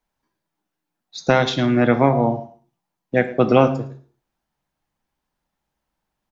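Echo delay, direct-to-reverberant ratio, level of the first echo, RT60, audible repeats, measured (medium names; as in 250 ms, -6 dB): 110 ms, 9.0 dB, -18.5 dB, 0.50 s, 1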